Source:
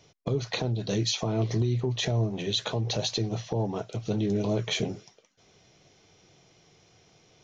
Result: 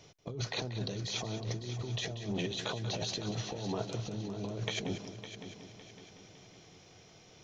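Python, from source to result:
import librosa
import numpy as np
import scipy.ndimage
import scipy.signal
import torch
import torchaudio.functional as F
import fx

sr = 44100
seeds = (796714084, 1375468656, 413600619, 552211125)

y = fx.over_compress(x, sr, threshold_db=-34.0, ratio=-1.0)
y = fx.echo_heads(y, sr, ms=186, heads='first and third', feedback_pct=57, wet_db=-12)
y = y * librosa.db_to_amplitude(-4.0)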